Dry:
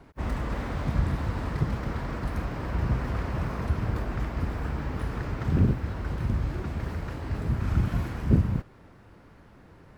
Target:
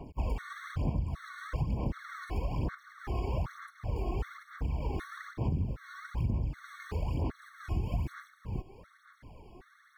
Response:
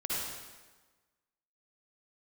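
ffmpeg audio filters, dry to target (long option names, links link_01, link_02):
-af "aphaser=in_gain=1:out_gain=1:delay=2.8:decay=0.61:speed=1.1:type=sinusoidal,acompressor=threshold=-27dB:ratio=12,afftfilt=real='re*gt(sin(2*PI*1.3*pts/sr)*(1-2*mod(floor(b*sr/1024/1100),2)),0)':imag='im*gt(sin(2*PI*1.3*pts/sr)*(1-2*mod(floor(b*sr/1024/1100),2)),0)':win_size=1024:overlap=0.75"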